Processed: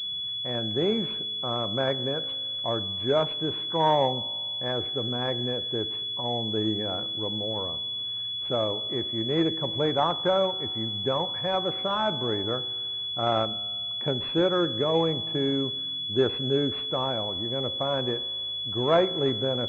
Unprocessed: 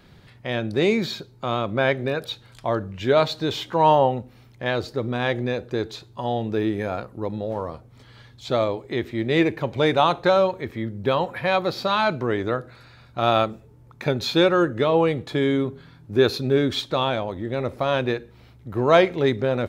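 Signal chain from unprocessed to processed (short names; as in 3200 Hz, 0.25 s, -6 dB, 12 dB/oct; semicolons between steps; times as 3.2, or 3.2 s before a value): resonator 54 Hz, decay 1.9 s, harmonics all, mix 50%; pulse-width modulation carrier 3400 Hz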